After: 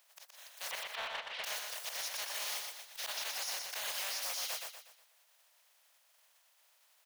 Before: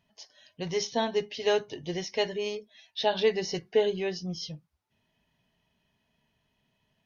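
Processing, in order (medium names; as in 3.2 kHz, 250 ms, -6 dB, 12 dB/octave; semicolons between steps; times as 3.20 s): spectral contrast reduction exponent 0.17; 0.71–1.44 s: low-pass 3.3 kHz 24 dB/octave; reverb removal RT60 0.54 s; steep high-pass 530 Hz 48 dB/octave; slow attack 140 ms; peak limiter -33 dBFS, peak gain reduction 17 dB; saturation -37.5 dBFS, distortion -17 dB; feedback delay 121 ms, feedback 41%, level -4 dB; trim +5.5 dB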